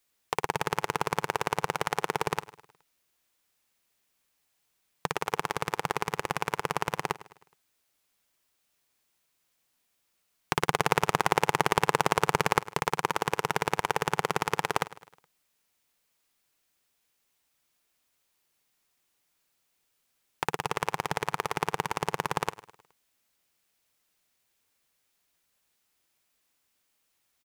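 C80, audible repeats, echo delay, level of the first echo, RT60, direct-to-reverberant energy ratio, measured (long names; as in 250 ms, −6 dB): no reverb audible, 3, 105 ms, −18.0 dB, no reverb audible, no reverb audible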